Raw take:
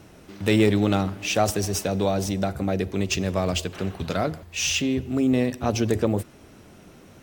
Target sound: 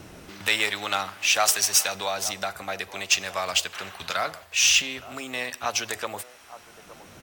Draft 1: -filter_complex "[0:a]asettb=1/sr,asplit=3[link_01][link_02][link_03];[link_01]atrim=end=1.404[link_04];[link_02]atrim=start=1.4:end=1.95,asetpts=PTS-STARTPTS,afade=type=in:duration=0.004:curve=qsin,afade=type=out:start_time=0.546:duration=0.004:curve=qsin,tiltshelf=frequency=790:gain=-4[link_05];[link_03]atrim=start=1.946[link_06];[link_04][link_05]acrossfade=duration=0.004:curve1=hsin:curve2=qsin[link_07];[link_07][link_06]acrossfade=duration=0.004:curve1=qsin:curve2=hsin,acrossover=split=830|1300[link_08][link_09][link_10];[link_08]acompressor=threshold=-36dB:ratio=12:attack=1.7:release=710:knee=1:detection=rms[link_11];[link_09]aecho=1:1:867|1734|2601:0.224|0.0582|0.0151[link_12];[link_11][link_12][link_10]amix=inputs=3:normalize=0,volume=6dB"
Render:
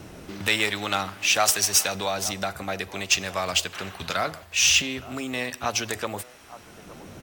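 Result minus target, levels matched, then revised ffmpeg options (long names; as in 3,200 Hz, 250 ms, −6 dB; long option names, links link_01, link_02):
downward compressor: peak gain reduction −8.5 dB
-filter_complex "[0:a]asettb=1/sr,asplit=3[link_01][link_02][link_03];[link_01]atrim=end=1.404[link_04];[link_02]atrim=start=1.4:end=1.95,asetpts=PTS-STARTPTS,afade=type=in:duration=0.004:curve=qsin,afade=type=out:start_time=0.546:duration=0.004:curve=qsin,tiltshelf=frequency=790:gain=-4[link_05];[link_03]atrim=start=1.946[link_06];[link_04][link_05]acrossfade=duration=0.004:curve1=hsin:curve2=qsin[link_07];[link_07][link_06]acrossfade=duration=0.004:curve1=qsin:curve2=hsin,acrossover=split=830|1300[link_08][link_09][link_10];[link_08]acompressor=threshold=-45.5dB:ratio=12:attack=1.7:release=710:knee=1:detection=rms[link_11];[link_09]aecho=1:1:867|1734|2601:0.224|0.0582|0.0151[link_12];[link_11][link_12][link_10]amix=inputs=3:normalize=0,volume=6dB"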